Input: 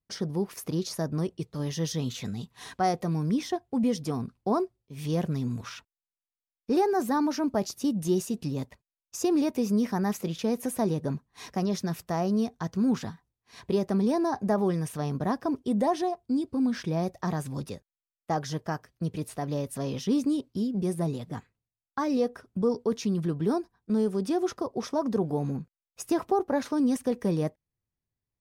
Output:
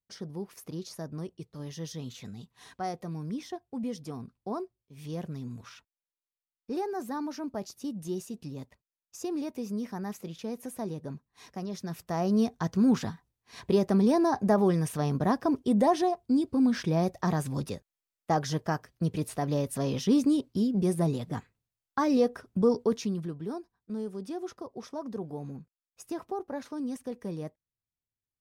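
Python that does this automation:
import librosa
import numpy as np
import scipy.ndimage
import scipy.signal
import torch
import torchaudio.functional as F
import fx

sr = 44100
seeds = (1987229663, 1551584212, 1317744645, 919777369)

y = fx.gain(x, sr, db=fx.line((11.71, -8.5), (12.42, 2.0), (22.83, 2.0), (23.39, -9.5)))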